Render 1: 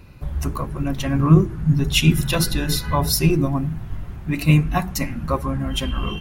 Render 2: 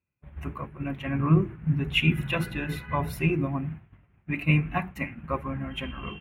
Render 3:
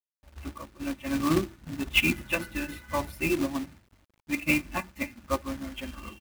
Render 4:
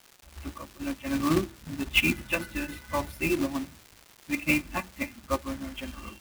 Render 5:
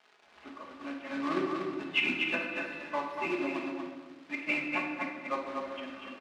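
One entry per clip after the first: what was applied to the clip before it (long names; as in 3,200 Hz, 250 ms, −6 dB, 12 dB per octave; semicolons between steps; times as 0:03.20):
high-pass filter 73 Hz 12 dB per octave; downward expander −23 dBFS; high shelf with overshoot 3,500 Hz −13 dB, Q 3; level −7.5 dB
comb filter 3.4 ms, depth 85%; log-companded quantiser 4 bits; expander for the loud parts 1.5 to 1, over −37 dBFS
surface crackle 470 per second −39 dBFS
band-pass filter 380–2,900 Hz; single-tap delay 241 ms −4.5 dB; rectangular room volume 880 cubic metres, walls mixed, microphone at 1.4 metres; level −4 dB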